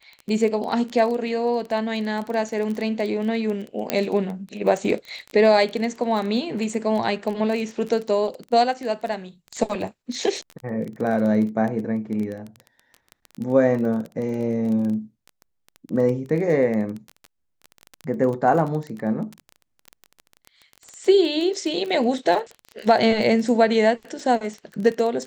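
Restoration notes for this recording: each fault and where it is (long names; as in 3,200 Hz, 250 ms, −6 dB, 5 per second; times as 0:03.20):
surface crackle 19 per second −27 dBFS
0:03.90: click −6 dBFS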